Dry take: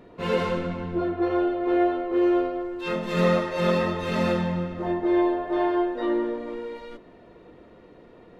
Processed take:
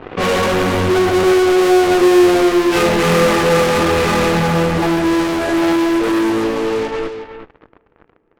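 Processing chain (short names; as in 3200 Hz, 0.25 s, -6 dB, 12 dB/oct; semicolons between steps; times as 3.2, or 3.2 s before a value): CVSD 16 kbps; Doppler pass-by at 2.38, 20 m/s, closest 16 m; comb 2.5 ms, depth 32%; in parallel at -6.5 dB: fuzz box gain 50 dB, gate -58 dBFS; on the sum: echo 0.365 s -9 dB; on a send at -24 dB: reverb, pre-delay 3 ms; on the sum: low-pass opened by the level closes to 1700 Hz, open at -18.5 dBFS; gain +4 dB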